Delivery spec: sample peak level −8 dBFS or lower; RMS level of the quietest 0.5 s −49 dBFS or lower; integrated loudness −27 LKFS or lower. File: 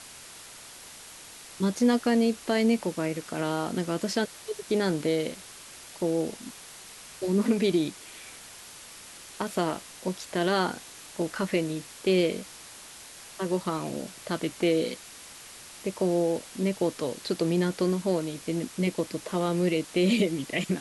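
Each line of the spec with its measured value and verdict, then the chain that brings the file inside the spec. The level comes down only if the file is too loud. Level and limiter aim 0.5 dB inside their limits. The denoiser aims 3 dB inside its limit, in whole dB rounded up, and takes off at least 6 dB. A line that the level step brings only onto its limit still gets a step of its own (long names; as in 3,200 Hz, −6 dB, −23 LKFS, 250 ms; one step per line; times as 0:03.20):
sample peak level −12.0 dBFS: in spec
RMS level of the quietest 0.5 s −46 dBFS: out of spec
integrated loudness −28.0 LKFS: in spec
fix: broadband denoise 6 dB, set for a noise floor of −46 dBFS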